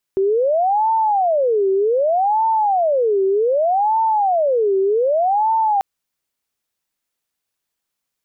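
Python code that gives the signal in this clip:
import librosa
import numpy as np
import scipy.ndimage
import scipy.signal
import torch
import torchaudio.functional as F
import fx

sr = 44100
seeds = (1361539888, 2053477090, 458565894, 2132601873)

y = fx.siren(sr, length_s=5.64, kind='wail', low_hz=384.0, high_hz=895.0, per_s=0.65, wave='sine', level_db=-13.5)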